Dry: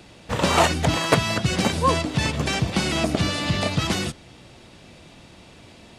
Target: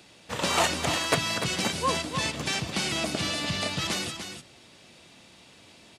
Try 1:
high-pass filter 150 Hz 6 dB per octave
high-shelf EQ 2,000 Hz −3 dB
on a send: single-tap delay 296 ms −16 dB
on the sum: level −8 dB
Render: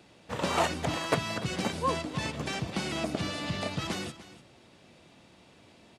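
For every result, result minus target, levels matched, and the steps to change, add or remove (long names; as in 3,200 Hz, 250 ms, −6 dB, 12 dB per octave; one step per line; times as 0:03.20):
echo-to-direct −8 dB; 4,000 Hz band −3.5 dB
change: single-tap delay 296 ms −8 dB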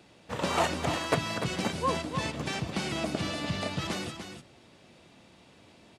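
4,000 Hz band −3.5 dB
change: high-shelf EQ 2,000 Hz +7 dB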